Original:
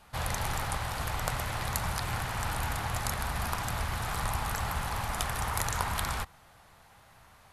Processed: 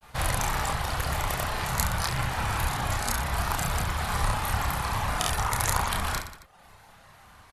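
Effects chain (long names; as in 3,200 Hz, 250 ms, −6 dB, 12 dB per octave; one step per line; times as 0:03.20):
granular cloud, pitch spread up and down by 0 semitones
reverb reduction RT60 0.83 s
reverse bouncing-ball delay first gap 30 ms, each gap 1.3×, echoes 5
level +6 dB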